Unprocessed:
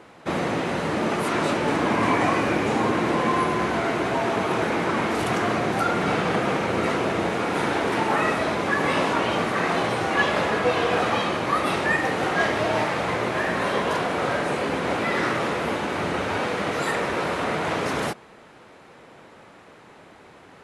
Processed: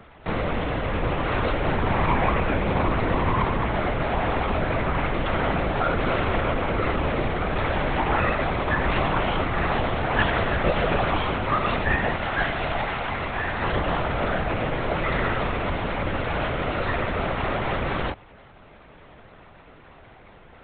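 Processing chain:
0:12.16–0:13.63: low-shelf EQ 470 Hz −9.5 dB
linear-prediction vocoder at 8 kHz whisper

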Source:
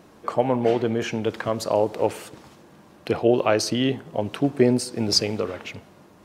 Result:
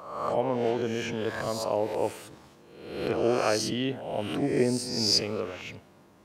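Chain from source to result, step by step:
peak hold with a rise ahead of every peak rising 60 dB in 0.90 s
level −8 dB

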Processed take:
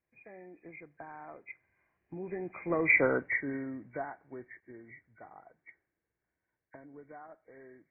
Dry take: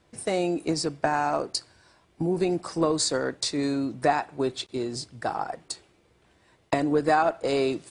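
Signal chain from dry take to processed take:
hearing-aid frequency compression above 1,500 Hz 4 to 1
source passing by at 0:03.05, 13 m/s, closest 2 metres

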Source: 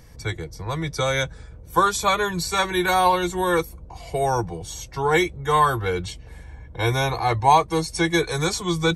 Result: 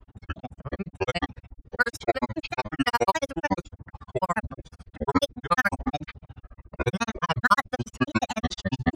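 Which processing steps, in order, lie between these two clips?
granular cloud 49 ms, grains 14 per second, spray 25 ms, pitch spread up and down by 12 semitones
low-pass that shuts in the quiet parts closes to 1,500 Hz, open at −18.5 dBFS

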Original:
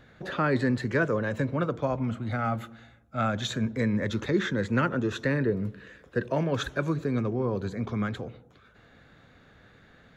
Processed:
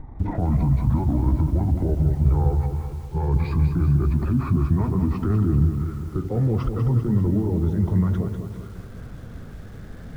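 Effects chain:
pitch glide at a constant tempo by −11 semitones ending unshifted
parametric band 2,800 Hz −13 dB 0.21 octaves
in parallel at −2.5 dB: downward compressor 6 to 1, threshold −38 dBFS, peak gain reduction 17 dB
on the sum: brickwall limiter −24 dBFS, peak gain reduction 11 dB
reversed playback
upward compression, threshold −42 dBFS
reversed playback
spectral tilt −4 dB per octave
feedback echo at a low word length 195 ms, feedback 55%, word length 8 bits, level −7.5 dB

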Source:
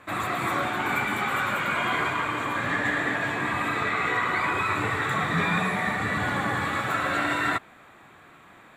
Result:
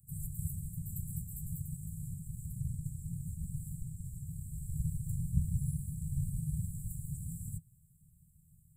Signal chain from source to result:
random phases in short frames
Chebyshev band-stop filter 160–8,200 Hz, order 5
level +2 dB

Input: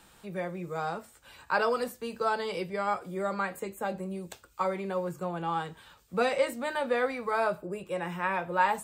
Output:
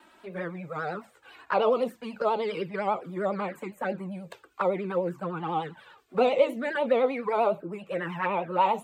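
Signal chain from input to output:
three-way crossover with the lows and the highs turned down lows −22 dB, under 160 Hz, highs −14 dB, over 3,300 Hz
pitch vibrato 10 Hz 95 cents
flanger swept by the level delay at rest 3.3 ms, full sweep at −26.5 dBFS
level +6.5 dB

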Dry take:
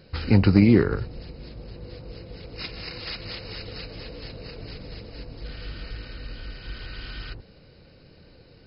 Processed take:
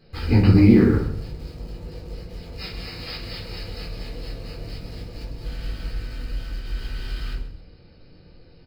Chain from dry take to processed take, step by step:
in parallel at −11.5 dB: bit reduction 6 bits
on the sum: repeating echo 131 ms, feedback 24%, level −14 dB
rectangular room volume 260 cubic metres, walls furnished, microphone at 3.9 metres
level −9 dB

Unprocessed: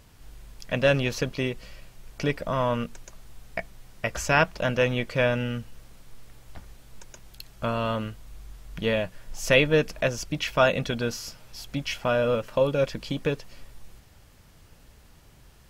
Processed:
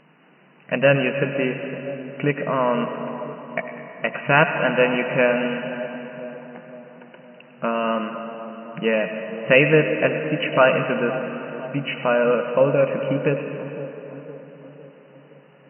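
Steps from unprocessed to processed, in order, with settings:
echo with a time of its own for lows and highs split 1,000 Hz, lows 510 ms, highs 101 ms, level −13 dB
comb and all-pass reverb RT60 4.1 s, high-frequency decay 0.6×, pre-delay 55 ms, DRR 7.5 dB
brick-wall band-pass 130–3,000 Hz
level +5 dB

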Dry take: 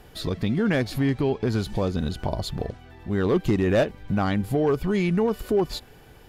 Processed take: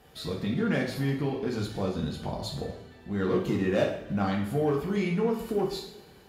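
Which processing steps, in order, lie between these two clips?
high-pass filter 84 Hz 12 dB per octave
coupled-rooms reverb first 0.54 s, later 1.9 s, from −18 dB, DRR −2 dB
level −8 dB

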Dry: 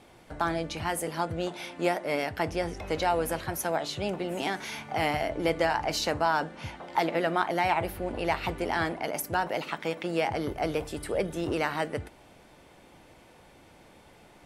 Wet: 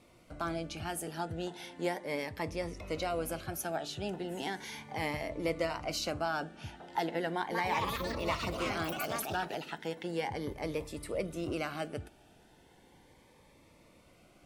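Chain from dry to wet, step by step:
0:07.32–0:09.88: delay with pitch and tempo change per echo 197 ms, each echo +4 semitones, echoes 3
phaser whose notches keep moving one way rising 0.36 Hz
level −5 dB

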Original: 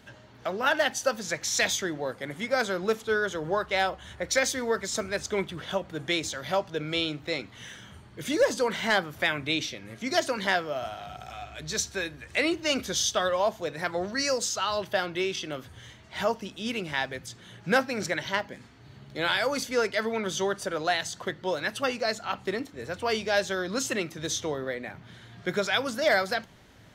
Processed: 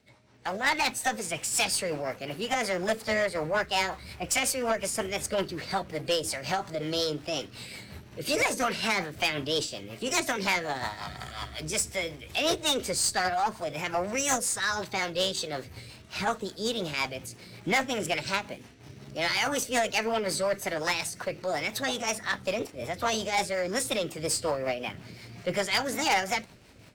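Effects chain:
automatic gain control gain up to 11.5 dB
formants moved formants +5 semitones
in parallel at −11.5 dB: bit-depth reduction 6 bits, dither none
on the sum: rotating-speaker cabinet horn 5.5 Hz
tube saturation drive 11 dB, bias 0.2
level −8 dB

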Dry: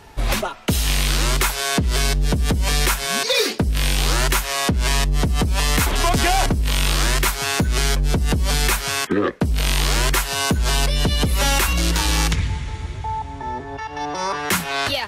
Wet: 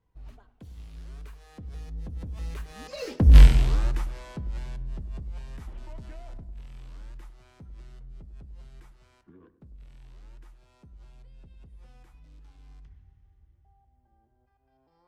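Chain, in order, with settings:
source passing by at 0:03.37, 38 m/s, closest 2.1 metres
spectral tilt −3 dB per octave
feedback echo with a low-pass in the loop 100 ms, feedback 63%, low-pass 1,500 Hz, level −15 dB
on a send at −18.5 dB: convolution reverb RT60 0.80 s, pre-delay 6 ms

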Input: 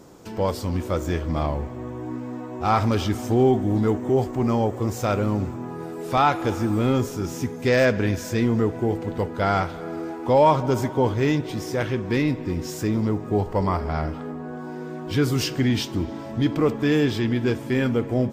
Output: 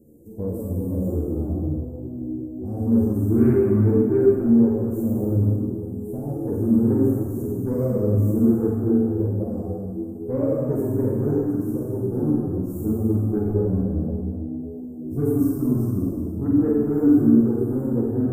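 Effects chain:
inverse Chebyshev band-stop filter 1,500–3,400 Hz, stop band 80 dB
harmonic generator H 4 −29 dB, 5 −42 dB, 6 −25 dB, 7 −35 dB, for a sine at −10.5 dBFS
flutter between parallel walls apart 8.2 metres, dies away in 0.72 s
convolution reverb RT60 2.0 s, pre-delay 37 ms, DRR −1 dB
string-ensemble chorus

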